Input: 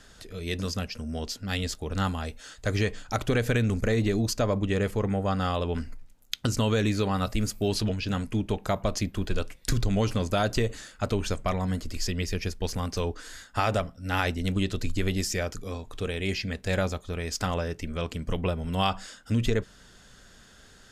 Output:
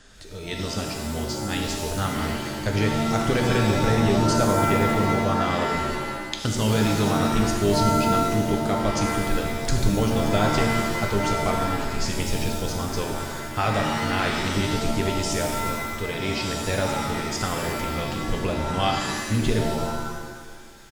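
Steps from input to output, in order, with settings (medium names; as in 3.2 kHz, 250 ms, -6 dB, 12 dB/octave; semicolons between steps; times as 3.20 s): resampled via 22.05 kHz; pitch-shifted reverb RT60 1.4 s, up +7 st, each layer -2 dB, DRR 1.5 dB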